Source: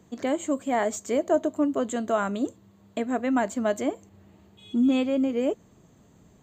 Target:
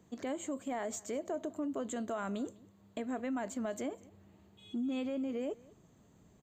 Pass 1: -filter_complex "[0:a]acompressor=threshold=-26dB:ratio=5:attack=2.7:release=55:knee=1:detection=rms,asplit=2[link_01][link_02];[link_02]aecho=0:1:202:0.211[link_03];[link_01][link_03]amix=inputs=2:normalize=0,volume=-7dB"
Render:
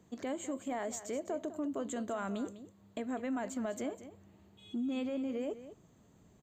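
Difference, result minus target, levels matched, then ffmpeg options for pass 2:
echo-to-direct +10 dB
-filter_complex "[0:a]acompressor=threshold=-26dB:ratio=5:attack=2.7:release=55:knee=1:detection=rms,asplit=2[link_01][link_02];[link_02]aecho=0:1:202:0.0668[link_03];[link_01][link_03]amix=inputs=2:normalize=0,volume=-7dB"

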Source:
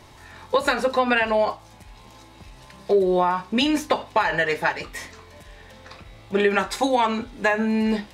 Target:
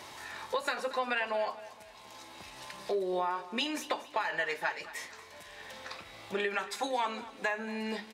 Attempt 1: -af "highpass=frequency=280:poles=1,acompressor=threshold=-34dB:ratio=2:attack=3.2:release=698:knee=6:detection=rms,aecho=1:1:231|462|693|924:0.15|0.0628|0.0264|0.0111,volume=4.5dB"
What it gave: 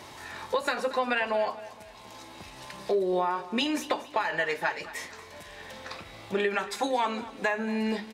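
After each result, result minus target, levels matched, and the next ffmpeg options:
downward compressor: peak gain reduction −3 dB; 250 Hz band +3.0 dB
-af "highpass=frequency=280:poles=1,acompressor=threshold=-41.5dB:ratio=2:attack=3.2:release=698:knee=6:detection=rms,aecho=1:1:231|462|693|924:0.15|0.0628|0.0264|0.0111,volume=4.5dB"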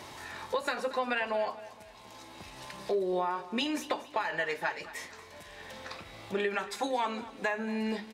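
250 Hz band +3.0 dB
-af "highpass=frequency=660:poles=1,acompressor=threshold=-41.5dB:ratio=2:attack=3.2:release=698:knee=6:detection=rms,aecho=1:1:231|462|693|924:0.15|0.0628|0.0264|0.0111,volume=4.5dB"

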